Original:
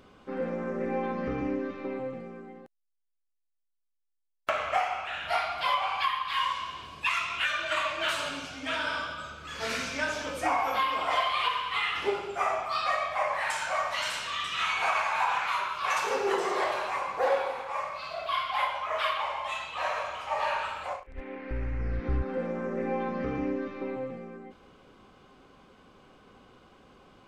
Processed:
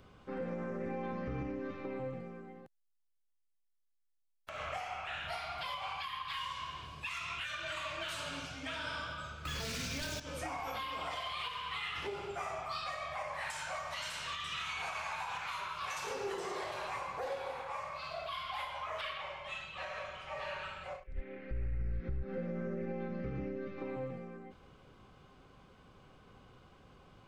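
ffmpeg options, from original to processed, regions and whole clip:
-filter_complex "[0:a]asettb=1/sr,asplit=3[s0][s1][s2];[s0]atrim=end=9.454[s3];[s1]atrim=start=9.45:end=10.2,asetpts=PTS-STARTPTS,afade=t=in:d=0.004:c=qsin,afade=t=out:st=0.746:d=0.004:c=qsin,lowpass=7700,aeval=exprs='0.158*sin(PI/2*3.16*val(0)/0.158)':c=same,acrusher=bits=4:mode=log:mix=0:aa=0.000001[s4];[s2]atrim=start=10.196[s5];[s3][s4]acrossfade=d=0.004:c1=hsin:c2=qsin[s6];[s6][s5]acrossfade=d=0.004:c1=qsin:c2=hsin,asettb=1/sr,asplit=3[s7][s8][s9];[s7]atrim=end=19.014[s10];[s8]atrim=start=19.01:end=23.78,asetpts=PTS-STARTPTS,afade=t=in:d=0.004:c=qsin,afade=t=out:st=4.766:d=0.004:c=qsin,lowpass=f=3100:p=1,equalizer=f=920:w=1.7:g=-11.5,aecho=1:1:5.3:0.45,atrim=end_sample=210357[s11];[s9]atrim=start=23.776[s12];[s10][s11]acrossfade=d=0.004:c1=hsin:c2=qsin[s13];[s13][s12]acrossfade=d=0.004:c1=qsin:c2=hsin,lowshelf=f=180:t=q:w=1.5:g=6,acrossover=split=390|3000[s14][s15][s16];[s15]acompressor=threshold=0.0224:ratio=6[s17];[s14][s17][s16]amix=inputs=3:normalize=0,alimiter=level_in=1.19:limit=0.0631:level=0:latency=1:release=126,volume=0.841,volume=0.596"

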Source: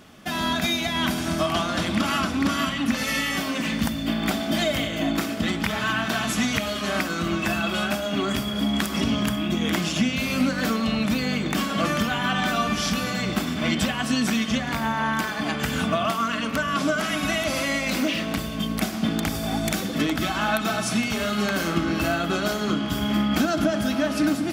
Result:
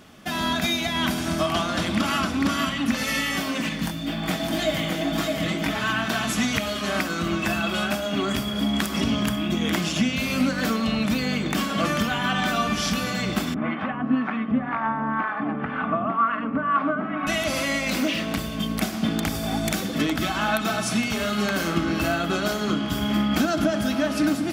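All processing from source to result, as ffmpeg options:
-filter_complex "[0:a]asettb=1/sr,asplit=3[s0][s1][s2];[s0]atrim=end=3.694[s3];[s1]atrim=start=3.69:end=5.75,asetpts=PTS-STARTPTS,afade=t=in:d=0.004:c=qsin,afade=t=out:st=2.056:d=0.004:c=qsin,flanger=delay=19:depth=5.2:speed=2,aecho=1:1:6.3:0.5,atrim=end_sample=90846,aecho=1:1:612:0.668,atrim=end_sample=90846[s4];[s2]atrim=start=5.746[s5];[s3][s4]acrossfade=d=0.004:c1=hsin:c2=qsin[s6];[s6][s5]acrossfade=d=0.004:c1=qsin:c2=hsin,asettb=1/sr,asplit=3[s7][s8][s9];[s7]atrim=end=13.544[s10];[s8]atrim=start=13.54:end=17.27,asetpts=PTS-STARTPTS,afade=t=in:d=0.004:c=qsin,afade=t=out:st=3.726:d=0.004:c=qsin,highpass=110,equalizer=f=270:t=q:w=4:g=7,equalizer=f=810:t=q:w=4:g=5,equalizer=f=1200:t=q:w=4:g=8,lowpass=f=2100:w=0.5412,lowpass=f=2100:w=1.3066,acrossover=split=580[s11][s12];[s11]aeval=exprs='val(0)*(1-0.7/2+0.7/2*cos(2*PI*2*n/s))':c=same[s13];[s12]aeval=exprs='val(0)*(1-0.7/2-0.7/2*cos(2*PI*2*n/s))':c=same[s14];[s13][s14]amix=inputs=2:normalize=0[s15];[s9]atrim=start=17.266[s16];[s10][s15]acrossfade=d=0.004:c1=hsin:c2=qsin[s17];[s17][s16]acrossfade=d=0.004:c1=qsin:c2=hsin"

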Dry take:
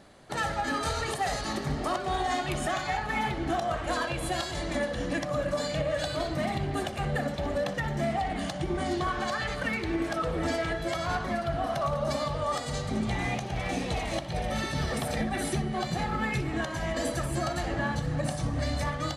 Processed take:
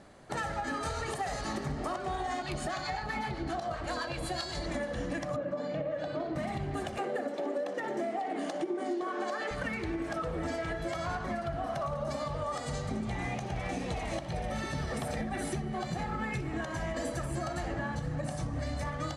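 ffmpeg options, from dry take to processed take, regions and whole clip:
-filter_complex "[0:a]asettb=1/sr,asplit=3[s0][s1][s2];[s0]atrim=end=2.424[s3];[s1]atrim=start=2.42:end=4.66,asetpts=PTS-STARTPTS,afade=t=in:d=0.004:c=qsin,afade=t=out:st=2.236:d=0.004:c=qsin,equalizer=f=4400:w=4.4:g=11.5,acrossover=split=890[s4][s5];[s4]aeval=exprs='val(0)*(1-0.5/2+0.5/2*cos(2*PI*7.8*n/s))':c=same[s6];[s5]aeval=exprs='val(0)*(1-0.5/2-0.5/2*cos(2*PI*7.8*n/s))':c=same[s7];[s6][s7]amix=inputs=2:normalize=0[s8];[s2]atrim=start=4.656[s9];[s3][s8]acrossfade=d=0.004:c1=hsin:c2=qsin[s10];[s10][s9]acrossfade=d=0.004:c1=qsin:c2=hsin,asettb=1/sr,asplit=3[s11][s12][s13];[s11]atrim=end=5.364[s14];[s12]atrim=start=5.36:end=6.36,asetpts=PTS-STARTPTS,afade=t=in:d=0.004:c=qsin,afade=t=out:st=0.996:d=0.004:c=qsin,highpass=240,lowpass=4000,tiltshelf=f=690:g=6.5[s15];[s13]atrim=start=6.356[s16];[s14][s15]acrossfade=d=0.004:c1=hsin:c2=qsin[s17];[s17][s16]acrossfade=d=0.004:c1=qsin:c2=hsin,asettb=1/sr,asplit=3[s18][s19][s20];[s18]atrim=end=6.984[s21];[s19]atrim=start=6.98:end=9.51,asetpts=PTS-STARTPTS,afade=t=in:d=0.004:c=qsin,afade=t=out:st=2.526:d=0.004:c=qsin,highpass=f=270:w=0.5412,highpass=f=270:w=1.3066,equalizer=f=360:w=0.88:g=9.5[s22];[s20]atrim=start=9.506[s23];[s21][s22]acrossfade=d=0.004:c1=hsin:c2=qsin[s24];[s24][s23]acrossfade=d=0.004:c1=qsin:c2=hsin,lowpass=10000,equalizer=f=3700:t=o:w=1.1:g=-5,acompressor=threshold=0.0282:ratio=6"

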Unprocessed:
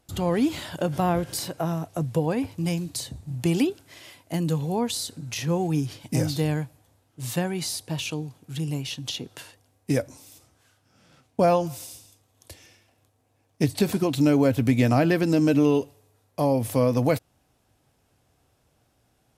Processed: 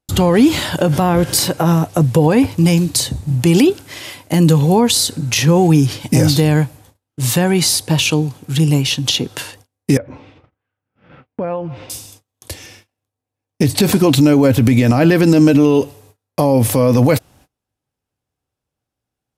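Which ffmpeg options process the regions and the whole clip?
-filter_complex "[0:a]asettb=1/sr,asplit=3[s0][s1][s2];[s0]atrim=end=9.974[s3];[s1]atrim=start=9.97:end=11.9,asetpts=PTS-STARTPTS,afade=t=in:d=0.004:c=qsin,afade=t=out:st=1.926:d=0.004:c=qsin,lowpass=f=2600:w=0.5412,lowpass=f=2600:w=1.3066,equalizer=f=490:w=3.7:g=2.5,acompressor=threshold=0.00794:ratio=2.5:attack=3.2:release=140:knee=1:detection=peak[s4];[s2]atrim=start=11.896[s5];[s3][s4]acrossfade=d=0.004:c1=hsin:c2=qsin[s6];[s6][s5]acrossfade=d=0.004:c1=qsin:c2=hsin,bandreject=f=670:w=12,agate=range=0.0316:threshold=0.00126:ratio=16:detection=peak,alimiter=level_in=7.5:limit=0.891:release=50:level=0:latency=1,volume=0.794"

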